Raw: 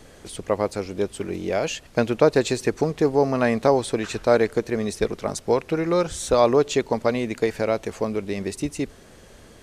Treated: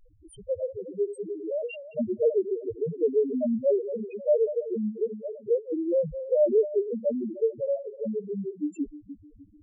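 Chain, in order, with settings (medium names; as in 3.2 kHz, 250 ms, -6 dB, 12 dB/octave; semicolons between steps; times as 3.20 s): backward echo that repeats 152 ms, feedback 60%, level -11.5 dB; mains buzz 100 Hz, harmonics 11, -52 dBFS -2 dB/octave; loudest bins only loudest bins 1; trim +3 dB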